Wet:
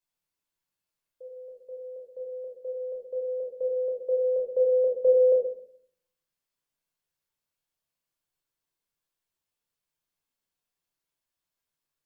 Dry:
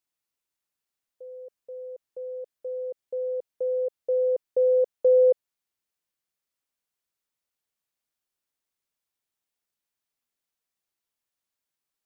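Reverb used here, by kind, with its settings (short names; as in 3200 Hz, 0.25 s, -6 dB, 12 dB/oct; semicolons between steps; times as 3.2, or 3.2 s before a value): shoebox room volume 830 m³, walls furnished, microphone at 5.2 m; gain -6.5 dB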